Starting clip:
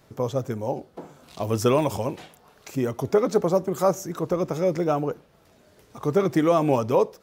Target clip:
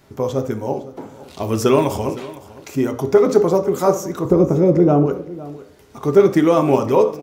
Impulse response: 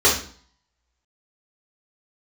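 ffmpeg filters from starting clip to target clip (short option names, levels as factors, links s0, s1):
-filter_complex "[0:a]asettb=1/sr,asplit=3[s0][s1][s2];[s0]atrim=end=4.254[s3];[s1]atrim=start=4.25:end=5.06,asetpts=PTS-STARTPTS,afade=t=in:d=0.004:c=qsin,afade=t=out:st=0.806:d=0.004:c=qsin,tiltshelf=f=830:g=9.5[s4];[s2]atrim=start=5.056[s5];[s3][s4]acrossfade=d=0.004:c1=hsin:c2=qsin[s6];[s6][s5]acrossfade=d=0.004:c1=qsin:c2=hsin,aecho=1:1:508:0.126,asplit=2[s7][s8];[1:a]atrim=start_sample=2205,highshelf=f=6300:g=-11.5[s9];[s8][s9]afir=irnorm=-1:irlink=0,volume=0.0531[s10];[s7][s10]amix=inputs=2:normalize=0,volume=1.58"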